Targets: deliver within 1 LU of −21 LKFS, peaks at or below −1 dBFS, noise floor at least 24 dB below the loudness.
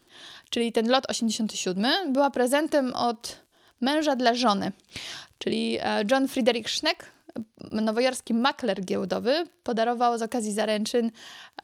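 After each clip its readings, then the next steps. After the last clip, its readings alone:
crackle rate 30 per second; integrated loudness −25.5 LKFS; sample peak −7.5 dBFS; target loudness −21.0 LKFS
→ click removal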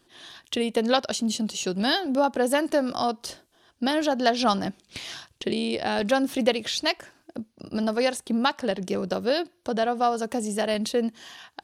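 crackle rate 0.086 per second; integrated loudness −25.5 LKFS; sample peak −7.5 dBFS; target loudness −21.0 LKFS
→ level +4.5 dB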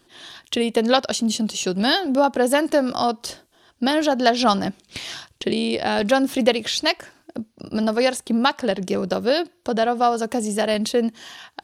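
integrated loudness −21.0 LKFS; sample peak −3.0 dBFS; background noise floor −61 dBFS

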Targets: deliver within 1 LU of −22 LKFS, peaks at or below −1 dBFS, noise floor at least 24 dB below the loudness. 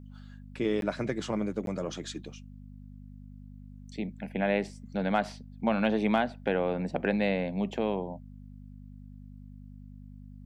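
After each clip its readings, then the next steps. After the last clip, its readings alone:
number of dropouts 2; longest dropout 12 ms; mains hum 50 Hz; hum harmonics up to 250 Hz; level of the hum −45 dBFS; integrated loudness −31.0 LKFS; sample peak −12.5 dBFS; target loudness −22.0 LKFS
→ repair the gap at 0:00.81/0:01.66, 12 ms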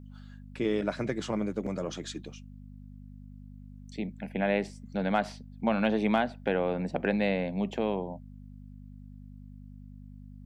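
number of dropouts 0; mains hum 50 Hz; hum harmonics up to 250 Hz; level of the hum −45 dBFS
→ hum removal 50 Hz, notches 5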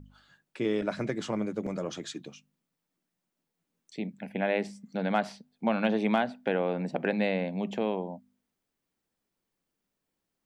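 mains hum none found; integrated loudness −31.0 LKFS; sample peak −12.5 dBFS; target loudness −22.0 LKFS
→ level +9 dB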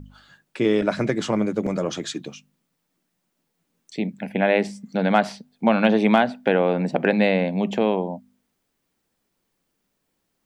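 integrated loudness −22.0 LKFS; sample peak −3.5 dBFS; background noise floor −75 dBFS

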